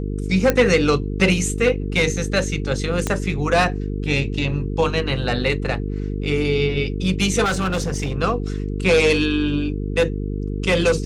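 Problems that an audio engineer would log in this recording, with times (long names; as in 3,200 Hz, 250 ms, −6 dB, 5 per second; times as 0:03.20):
mains buzz 50 Hz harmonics 9 −25 dBFS
0:00.50: click −3 dBFS
0:03.07: click −8 dBFS
0:07.44–0:08.16: clipping −17.5 dBFS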